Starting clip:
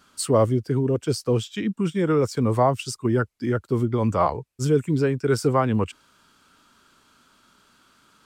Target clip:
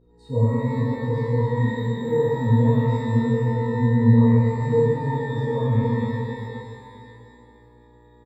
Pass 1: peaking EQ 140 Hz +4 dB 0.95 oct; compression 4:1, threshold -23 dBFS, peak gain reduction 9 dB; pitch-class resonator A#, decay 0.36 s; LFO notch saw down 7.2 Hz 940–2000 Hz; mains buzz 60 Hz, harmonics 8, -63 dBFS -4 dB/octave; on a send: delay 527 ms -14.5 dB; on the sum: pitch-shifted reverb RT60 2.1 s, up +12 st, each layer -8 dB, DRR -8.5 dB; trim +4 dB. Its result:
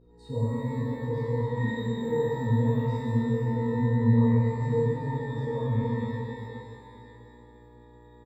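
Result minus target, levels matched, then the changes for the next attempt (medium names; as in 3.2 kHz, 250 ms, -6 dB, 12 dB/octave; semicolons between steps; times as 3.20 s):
compression: peak gain reduction +9 dB
remove: compression 4:1, threshold -23 dBFS, peak gain reduction 9 dB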